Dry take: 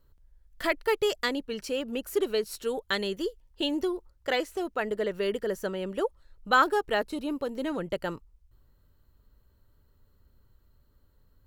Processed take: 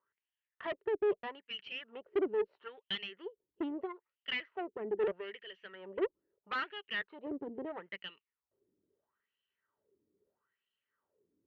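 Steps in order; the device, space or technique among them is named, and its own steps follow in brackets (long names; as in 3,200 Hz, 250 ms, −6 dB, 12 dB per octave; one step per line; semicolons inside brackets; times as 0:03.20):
wah-wah guitar rig (LFO wah 0.77 Hz 300–3,000 Hz, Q 5; tube saturation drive 38 dB, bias 0.75; loudspeaker in its box 91–3,400 Hz, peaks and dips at 190 Hz +6 dB, 400 Hz +9 dB, 1,900 Hz +6 dB, 3,000 Hz +7 dB)
level +4 dB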